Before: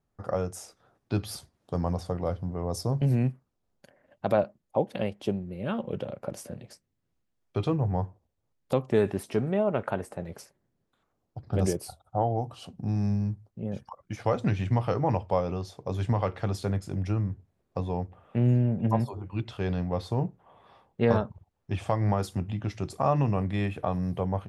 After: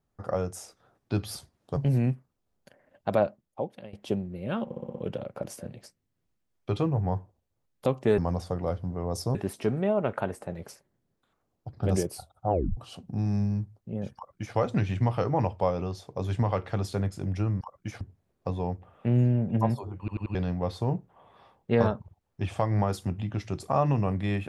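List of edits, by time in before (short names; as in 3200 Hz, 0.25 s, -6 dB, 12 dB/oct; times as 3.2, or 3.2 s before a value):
1.77–2.94 move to 9.05
4.39–5.1 fade out, to -21 dB
5.83 stutter 0.06 s, 6 plays
12.2 tape stop 0.27 s
13.86–14.26 copy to 17.31
19.29 stutter in place 0.09 s, 4 plays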